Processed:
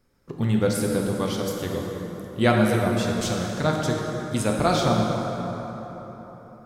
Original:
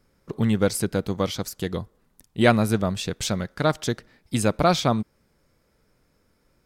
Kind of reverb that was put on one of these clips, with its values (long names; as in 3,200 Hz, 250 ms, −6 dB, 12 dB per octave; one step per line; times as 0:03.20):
dense smooth reverb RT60 4.3 s, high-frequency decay 0.5×, DRR −1 dB
level −3.5 dB